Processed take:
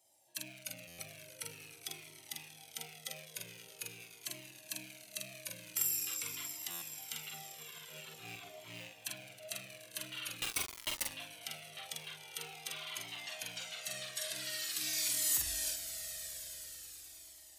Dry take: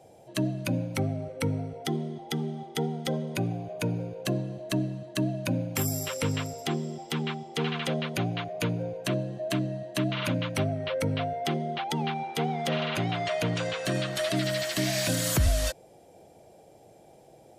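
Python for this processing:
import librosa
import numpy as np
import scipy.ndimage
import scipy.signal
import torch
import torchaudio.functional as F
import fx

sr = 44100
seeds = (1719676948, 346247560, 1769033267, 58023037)

y = fx.rattle_buzz(x, sr, strikes_db=-33.0, level_db=-31.0)
y = F.preemphasis(torch.from_numpy(y), 0.97).numpy()
y = fx.over_compress(y, sr, threshold_db=-53.0, ratio=-1.0, at=(7.28, 8.87), fade=0.02)
y = fx.echo_swell(y, sr, ms=106, loudest=5, wet_db=-17.0)
y = fx.quant_companded(y, sr, bits=2, at=(10.41, 11.09))
y = fx.doubler(y, sr, ms=45.0, db=-3.5)
y = fx.buffer_glitch(y, sr, at_s=(0.87, 6.7), block=512, repeats=9)
y = fx.comb_cascade(y, sr, direction='falling', hz=0.46)
y = y * librosa.db_to_amplitude(1.0)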